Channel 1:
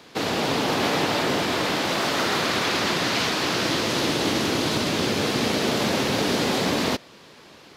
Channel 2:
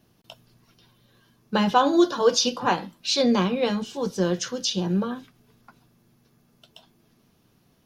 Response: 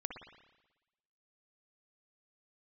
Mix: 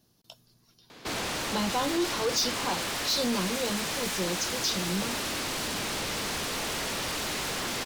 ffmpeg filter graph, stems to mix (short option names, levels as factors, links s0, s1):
-filter_complex "[0:a]aeval=exprs='0.0531*(abs(mod(val(0)/0.0531+3,4)-2)-1)':c=same,adelay=900,volume=0.841[s0];[1:a]highshelf=f=3400:t=q:w=1.5:g=6.5,volume=0.473[s1];[s0][s1]amix=inputs=2:normalize=0,asoftclip=type=tanh:threshold=0.0794"